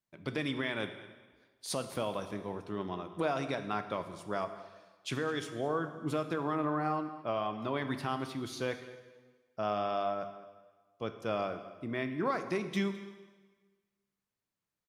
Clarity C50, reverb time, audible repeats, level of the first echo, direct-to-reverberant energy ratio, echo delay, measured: 10.0 dB, 1.4 s, 1, -19.0 dB, 8.0 dB, 0.211 s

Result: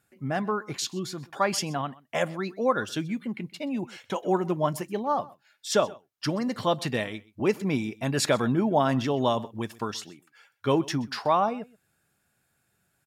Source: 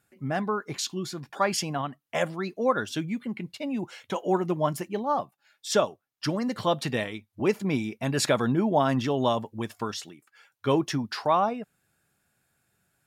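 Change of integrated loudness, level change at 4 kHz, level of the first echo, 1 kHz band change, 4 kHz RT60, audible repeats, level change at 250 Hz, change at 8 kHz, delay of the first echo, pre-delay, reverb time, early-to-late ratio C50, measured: 0.0 dB, 0.0 dB, -22.0 dB, 0.0 dB, none, 1, 0.0 dB, 0.0 dB, 0.127 s, none, none, none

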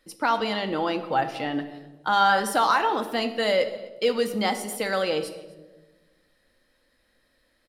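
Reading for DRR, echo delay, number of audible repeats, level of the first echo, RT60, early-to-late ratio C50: 6.0 dB, 0.252 s, 1, -21.5 dB, 1.2 s, 11.0 dB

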